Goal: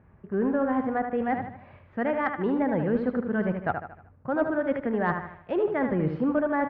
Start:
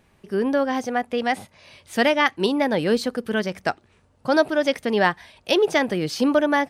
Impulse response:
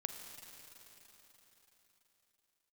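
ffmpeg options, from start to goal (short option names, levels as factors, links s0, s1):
-filter_complex "[0:a]tiltshelf=f=1200:g=-3.5,asplit=2[s0][s1];[s1]acrusher=bits=4:mix=0:aa=0.000001,volume=0.355[s2];[s0][s2]amix=inputs=2:normalize=0,equalizer=f=88:w=0.49:g=11.5,areverse,acompressor=threshold=0.0794:ratio=5,areverse,lowpass=f=1600:w=0.5412,lowpass=f=1600:w=1.3066,aecho=1:1:76|152|228|304|380:0.447|0.197|0.0865|0.0381|0.0167,acontrast=86,volume=0.422"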